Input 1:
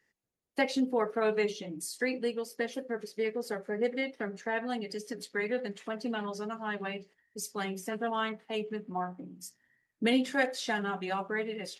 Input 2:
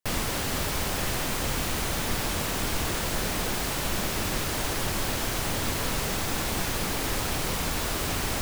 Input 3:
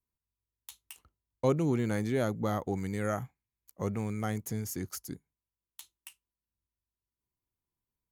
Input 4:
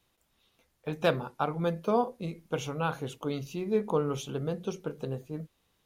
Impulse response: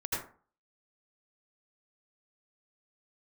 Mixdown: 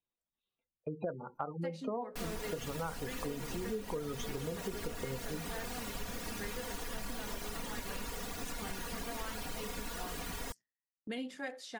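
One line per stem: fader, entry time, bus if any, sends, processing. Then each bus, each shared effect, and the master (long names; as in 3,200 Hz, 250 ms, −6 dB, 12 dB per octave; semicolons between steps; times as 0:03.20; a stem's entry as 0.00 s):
−10.5 dB, 1.05 s, no send, Chebyshev low-pass filter 11,000 Hz
−14.5 dB, 2.10 s, send −6.5 dB, reverb reduction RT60 1.8 s; comb filter 4.2 ms, depth 92%
−18.5 dB, 1.80 s, no send, no processing
0.0 dB, 0.00 s, no send, gate on every frequency bin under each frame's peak −15 dB strong; parametric band 69 Hz −6 dB 2.1 octaves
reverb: on, RT60 0.40 s, pre-delay 72 ms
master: noise gate with hold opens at −45 dBFS; downward compressor 6 to 1, threshold −35 dBFS, peak gain reduction 13.5 dB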